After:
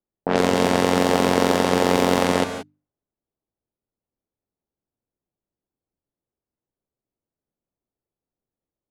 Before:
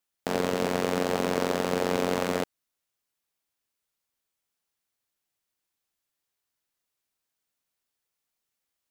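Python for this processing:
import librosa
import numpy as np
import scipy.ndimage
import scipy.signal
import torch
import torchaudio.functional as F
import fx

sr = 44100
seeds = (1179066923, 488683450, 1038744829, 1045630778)

y = fx.env_lowpass(x, sr, base_hz=440.0, full_db=-22.0)
y = fx.hum_notches(y, sr, base_hz=50, count=6)
y = fx.rev_gated(y, sr, seeds[0], gate_ms=200, shape='rising', drr_db=8.0)
y = F.gain(torch.from_numpy(y), 8.5).numpy()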